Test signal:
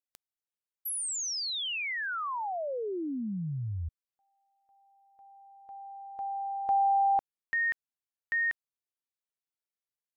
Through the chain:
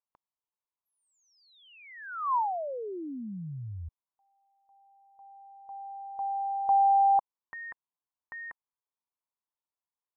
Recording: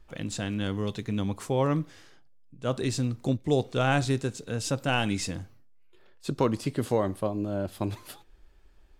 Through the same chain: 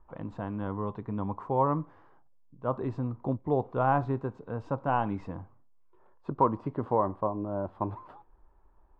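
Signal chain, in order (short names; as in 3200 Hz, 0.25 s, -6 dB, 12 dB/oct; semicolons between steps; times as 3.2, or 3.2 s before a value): synth low-pass 1000 Hz, resonance Q 4.5; gain -4.5 dB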